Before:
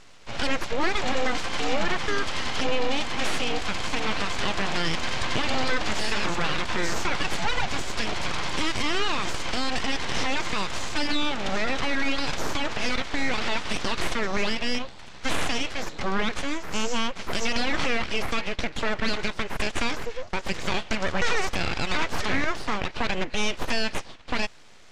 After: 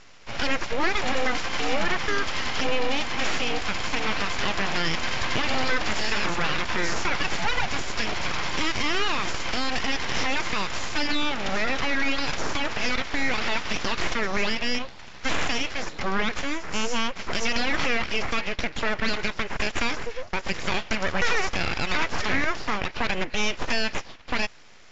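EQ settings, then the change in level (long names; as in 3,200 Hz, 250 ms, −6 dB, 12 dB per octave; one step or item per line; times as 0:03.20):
Chebyshev low-pass with heavy ripple 7,300 Hz, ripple 3 dB
+2.5 dB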